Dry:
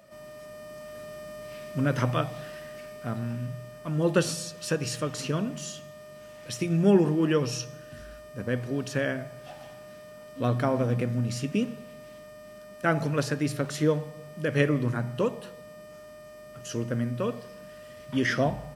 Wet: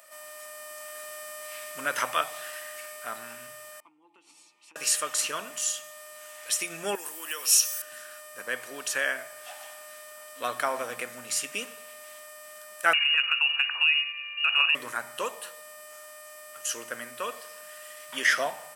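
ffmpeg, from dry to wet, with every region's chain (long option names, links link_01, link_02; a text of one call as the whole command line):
ffmpeg -i in.wav -filter_complex "[0:a]asettb=1/sr,asplit=3[link_01][link_02][link_03];[link_01]atrim=end=3.804[link_04];[link_02]atrim=start=3.8:end=4.76,asetpts=PTS-STARTPTS,afade=type=in:duration=0.004:curve=qsin,afade=type=out:start_time=0.956:duration=0.004:curve=qsin,asplit=3[link_05][link_06][link_07];[link_05]bandpass=frequency=300:width_type=q:width=8,volume=0dB[link_08];[link_06]bandpass=frequency=870:width_type=q:width=8,volume=-6dB[link_09];[link_07]bandpass=frequency=2240:width_type=q:width=8,volume=-9dB[link_10];[link_08][link_09][link_10]amix=inputs=3:normalize=0,equalizer=frequency=2300:width=7.1:gain=-4.5,acompressor=threshold=-48dB:ratio=10:attack=3.2:release=140:knee=1:detection=peak[link_11];[link_03]atrim=start=4.756[link_12];[link_04][link_11]acrossfade=duration=0.004:curve1=hsin:curve2=qsin[link_13];[link_13][link_12]acrossfade=duration=0.004:curve1=qsin:curve2=hsin,asettb=1/sr,asplit=3[link_14][link_15][link_16];[link_14]atrim=end=6.954[link_17];[link_15]atrim=start=6.95:end=7.82,asetpts=PTS-STARTPTS,afade=type=in:duration=0.004:curve=qsin,afade=type=out:start_time=0.866:duration=0.004:curve=qsin,acompressor=threshold=-34dB:ratio=2.5:attack=3.2:release=140:knee=1:detection=peak,aemphasis=mode=production:type=riaa[link_18];[link_16]atrim=start=7.816[link_19];[link_17][link_18]acrossfade=duration=0.004:curve1=hsin:curve2=qsin[link_20];[link_20][link_19]acrossfade=duration=0.004:curve1=qsin:curve2=hsin,asettb=1/sr,asplit=3[link_21][link_22][link_23];[link_21]atrim=end=12.934[link_24];[link_22]atrim=start=12.93:end=14.75,asetpts=PTS-STARTPTS,afade=type=in:duration=0.004:curve=qsin,afade=type=out:start_time=1.816:duration=0.004:curve=qsin,lowpass=frequency=2600:width_type=q:width=0.5098,lowpass=frequency=2600:width_type=q:width=0.6013,lowpass=frequency=2600:width_type=q:width=0.9,lowpass=frequency=2600:width_type=q:width=2.563,afreqshift=-3000,acompressor=threshold=-26dB:ratio=2.5:attack=3.2:release=140:knee=1:detection=peak[link_25];[link_23]atrim=start=14.746[link_26];[link_24][link_25]acrossfade=duration=0.004:curve1=hsin:curve2=qsin[link_27];[link_27][link_26]acrossfade=duration=0.004:curve1=qsin:curve2=hsin,highpass=1100,highshelf=frequency=6600:width_type=q:width=1.5:gain=7,volume=7dB" out.wav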